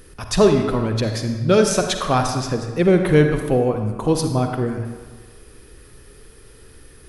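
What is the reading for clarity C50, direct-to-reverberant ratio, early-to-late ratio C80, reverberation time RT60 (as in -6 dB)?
5.5 dB, 5.0 dB, 7.0 dB, 1.5 s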